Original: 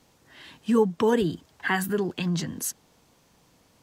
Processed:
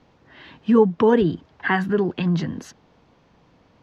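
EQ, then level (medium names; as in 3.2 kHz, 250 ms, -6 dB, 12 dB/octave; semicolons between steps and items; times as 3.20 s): distance through air 90 m; treble shelf 4.3 kHz -11 dB; peaking EQ 8.6 kHz -11.5 dB 0.5 oct; +6.0 dB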